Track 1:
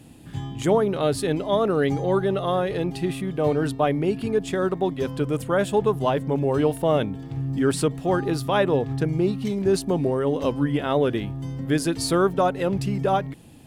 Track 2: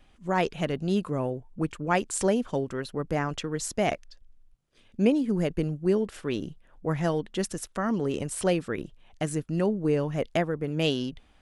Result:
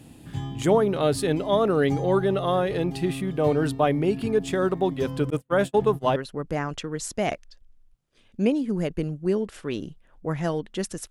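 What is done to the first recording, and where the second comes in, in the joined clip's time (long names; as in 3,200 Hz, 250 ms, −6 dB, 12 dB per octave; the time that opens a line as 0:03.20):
track 1
0:05.30–0:06.16: noise gate −23 dBFS, range −43 dB
0:06.16: continue with track 2 from 0:02.76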